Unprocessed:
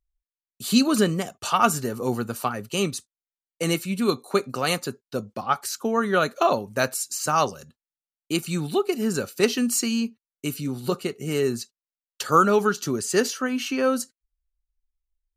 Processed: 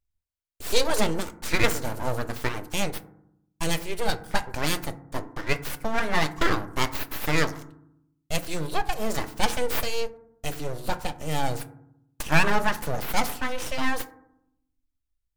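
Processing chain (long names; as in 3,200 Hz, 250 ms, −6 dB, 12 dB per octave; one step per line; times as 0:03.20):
full-wave rectification
feedback delay network reverb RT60 0.74 s, low-frequency decay 1.55×, high-frequency decay 0.3×, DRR 10.5 dB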